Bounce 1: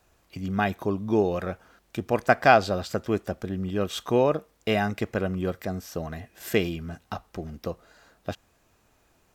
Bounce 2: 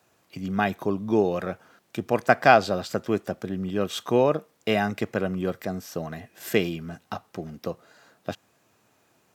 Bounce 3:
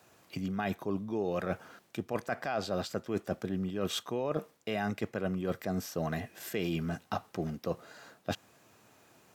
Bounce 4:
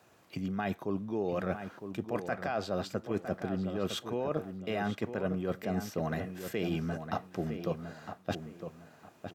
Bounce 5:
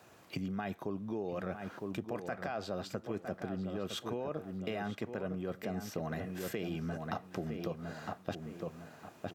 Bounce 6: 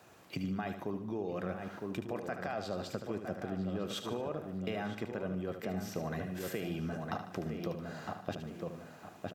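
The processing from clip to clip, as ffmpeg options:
-af "highpass=f=110:w=0.5412,highpass=f=110:w=1.3066,volume=1dB"
-af "alimiter=limit=-13dB:level=0:latency=1:release=70,areverse,acompressor=threshold=-32dB:ratio=12,areverse,volume=3dB"
-filter_complex "[0:a]highshelf=f=3.9k:g=-5.5,asplit=2[a][b];[b]adelay=958,lowpass=f=2.6k:p=1,volume=-8.5dB,asplit=2[c][d];[d]adelay=958,lowpass=f=2.6k:p=1,volume=0.28,asplit=2[e][f];[f]adelay=958,lowpass=f=2.6k:p=1,volume=0.28[g];[a][c][e][g]amix=inputs=4:normalize=0"
-af "acompressor=threshold=-38dB:ratio=6,volume=3.5dB"
-af "aecho=1:1:75|150|225|300|375:0.355|0.167|0.0784|0.0368|0.0173"

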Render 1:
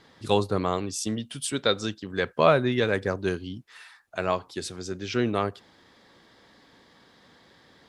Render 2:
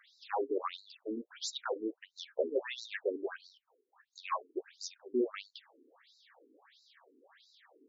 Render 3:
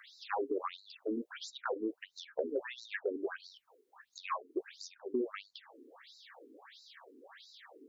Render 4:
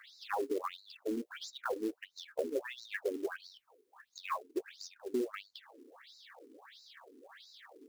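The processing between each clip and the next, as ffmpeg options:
-af "asoftclip=type=tanh:threshold=-19dB,afftfilt=real='re*between(b*sr/1024,310*pow(5400/310,0.5+0.5*sin(2*PI*1.5*pts/sr))/1.41,310*pow(5400/310,0.5+0.5*sin(2*PI*1.5*pts/sr))*1.41)':imag='im*between(b*sr/1024,310*pow(5400/310,0.5+0.5*sin(2*PI*1.5*pts/sr))/1.41,310*pow(5400/310,0.5+0.5*sin(2*PI*1.5*pts/sr))*1.41)':win_size=1024:overlap=0.75"
-filter_complex "[0:a]acrossover=split=260|1700[a][b][c];[a]acompressor=threshold=-48dB:ratio=4[d];[b]acompressor=threshold=-44dB:ratio=4[e];[c]acompressor=threshold=-57dB:ratio=4[f];[d][e][f]amix=inputs=3:normalize=0,volume=7.5dB"
-af "acrusher=bits=5:mode=log:mix=0:aa=0.000001"

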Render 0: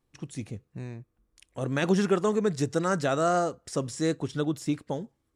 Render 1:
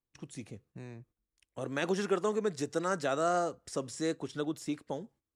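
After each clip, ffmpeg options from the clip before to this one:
-filter_complex "[0:a]agate=range=-13dB:threshold=-54dB:ratio=16:detection=peak,acrossover=split=240[a][b];[a]acompressor=threshold=-42dB:ratio=6[c];[c][b]amix=inputs=2:normalize=0,volume=-4.5dB"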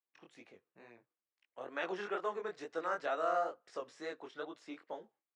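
-af "flanger=delay=17:depth=7.6:speed=2.2,highpass=570,lowpass=2.7k,volume=1dB"

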